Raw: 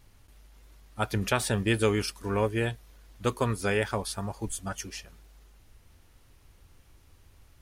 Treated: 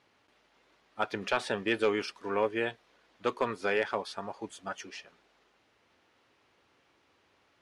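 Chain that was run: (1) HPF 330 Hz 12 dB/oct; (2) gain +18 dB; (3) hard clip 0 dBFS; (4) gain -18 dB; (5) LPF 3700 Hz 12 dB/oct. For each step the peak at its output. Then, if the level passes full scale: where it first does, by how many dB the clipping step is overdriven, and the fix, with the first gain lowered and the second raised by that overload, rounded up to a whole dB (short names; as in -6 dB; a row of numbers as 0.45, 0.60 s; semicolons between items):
-9.5, +8.5, 0.0, -18.0, -17.5 dBFS; step 2, 8.5 dB; step 2 +9 dB, step 4 -9 dB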